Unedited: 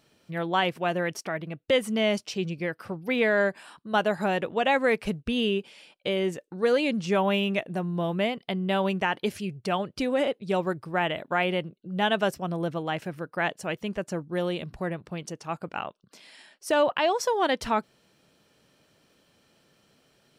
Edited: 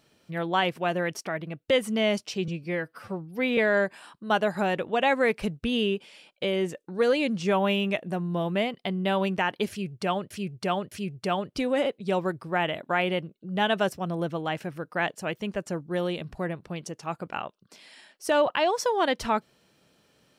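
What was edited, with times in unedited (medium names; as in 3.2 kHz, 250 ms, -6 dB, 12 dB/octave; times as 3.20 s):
2.48–3.21 s: stretch 1.5×
9.33–9.94 s: loop, 3 plays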